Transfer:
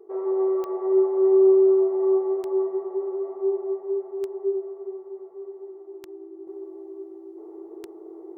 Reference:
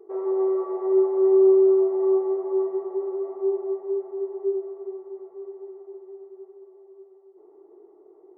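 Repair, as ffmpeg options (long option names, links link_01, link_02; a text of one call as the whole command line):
ffmpeg -i in.wav -af "adeclick=threshold=4,bandreject=frequency=330:width=30,asetnsamples=nb_out_samples=441:pad=0,asendcmd='6.47 volume volume -8.5dB',volume=0dB" out.wav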